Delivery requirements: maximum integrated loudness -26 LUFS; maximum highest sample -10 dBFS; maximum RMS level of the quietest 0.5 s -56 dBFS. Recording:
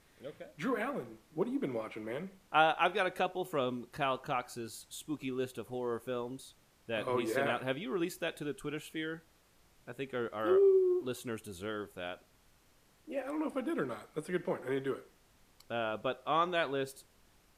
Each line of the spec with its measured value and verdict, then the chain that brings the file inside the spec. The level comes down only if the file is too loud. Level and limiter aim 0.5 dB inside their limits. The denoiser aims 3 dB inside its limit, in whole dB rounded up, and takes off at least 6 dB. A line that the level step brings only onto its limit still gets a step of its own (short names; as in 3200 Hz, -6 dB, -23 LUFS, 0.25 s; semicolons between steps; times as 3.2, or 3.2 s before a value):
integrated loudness -35.0 LUFS: OK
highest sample -13.5 dBFS: OK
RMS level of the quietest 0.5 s -67 dBFS: OK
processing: none